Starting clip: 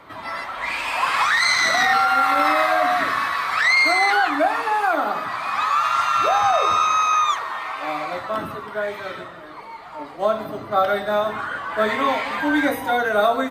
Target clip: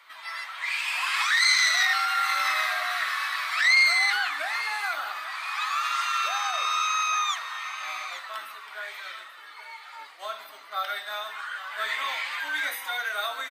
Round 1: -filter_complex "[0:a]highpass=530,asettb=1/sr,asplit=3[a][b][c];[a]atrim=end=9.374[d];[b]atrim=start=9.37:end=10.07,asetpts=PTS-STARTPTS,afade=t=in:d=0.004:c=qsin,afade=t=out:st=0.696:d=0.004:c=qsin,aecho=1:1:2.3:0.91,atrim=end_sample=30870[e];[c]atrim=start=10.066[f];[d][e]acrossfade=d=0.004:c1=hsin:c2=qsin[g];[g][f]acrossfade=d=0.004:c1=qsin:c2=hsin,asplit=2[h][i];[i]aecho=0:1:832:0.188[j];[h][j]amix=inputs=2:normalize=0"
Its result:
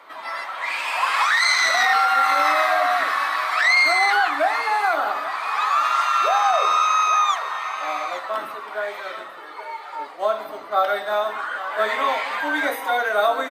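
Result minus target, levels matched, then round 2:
500 Hz band +13.5 dB
-filter_complex "[0:a]highpass=2k,asettb=1/sr,asplit=3[a][b][c];[a]atrim=end=9.374[d];[b]atrim=start=9.37:end=10.07,asetpts=PTS-STARTPTS,afade=t=in:d=0.004:c=qsin,afade=t=out:st=0.696:d=0.004:c=qsin,aecho=1:1:2.3:0.91,atrim=end_sample=30870[e];[c]atrim=start=10.066[f];[d][e]acrossfade=d=0.004:c1=hsin:c2=qsin[g];[g][f]acrossfade=d=0.004:c1=qsin:c2=hsin,asplit=2[h][i];[i]aecho=0:1:832:0.188[j];[h][j]amix=inputs=2:normalize=0"

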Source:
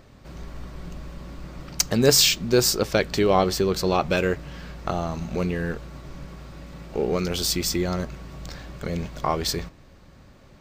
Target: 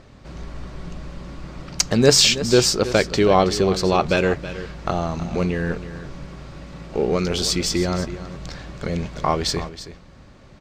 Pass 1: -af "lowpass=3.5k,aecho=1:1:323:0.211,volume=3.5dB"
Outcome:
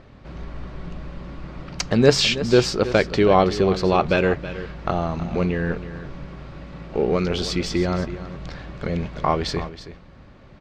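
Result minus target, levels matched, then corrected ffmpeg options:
8000 Hz band -9.0 dB
-af "lowpass=8.1k,aecho=1:1:323:0.211,volume=3.5dB"

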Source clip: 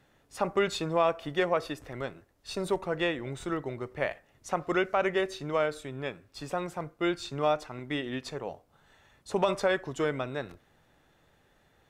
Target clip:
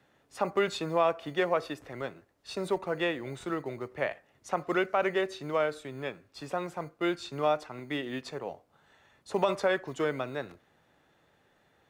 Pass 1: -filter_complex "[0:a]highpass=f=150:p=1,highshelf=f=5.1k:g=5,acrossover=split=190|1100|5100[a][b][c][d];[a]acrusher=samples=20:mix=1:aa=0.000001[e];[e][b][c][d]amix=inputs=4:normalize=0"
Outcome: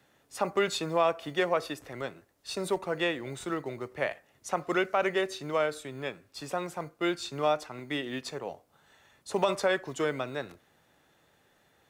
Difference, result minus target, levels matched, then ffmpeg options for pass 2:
8000 Hz band +6.5 dB
-filter_complex "[0:a]highpass=f=150:p=1,highshelf=f=5.1k:g=-5.5,acrossover=split=190|1100|5100[a][b][c][d];[a]acrusher=samples=20:mix=1:aa=0.000001[e];[e][b][c][d]amix=inputs=4:normalize=0"

